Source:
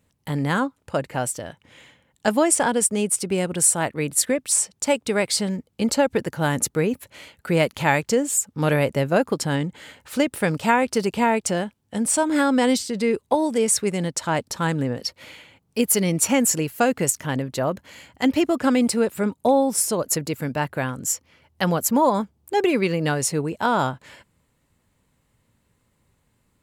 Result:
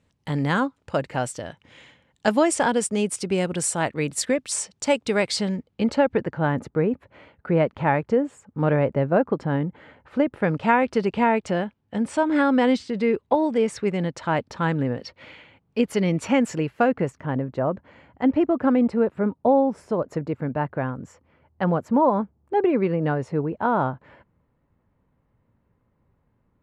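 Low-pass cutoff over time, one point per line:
5.28 s 5.9 kHz
6.02 s 2.4 kHz
6.69 s 1.4 kHz
10.28 s 1.4 kHz
10.75 s 2.7 kHz
16.49 s 2.7 kHz
17.26 s 1.3 kHz

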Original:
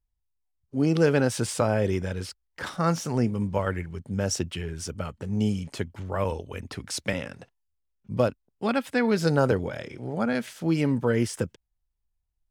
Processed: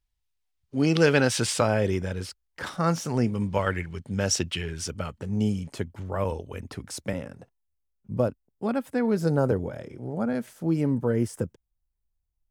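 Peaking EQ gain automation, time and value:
peaking EQ 3.2 kHz 2.5 oct
1.48 s +8.5 dB
1.99 s -0.5 dB
3.02 s -0.5 dB
3.60 s +6.5 dB
4.69 s +6.5 dB
5.56 s -4 dB
6.66 s -4 dB
7.26 s -12.5 dB

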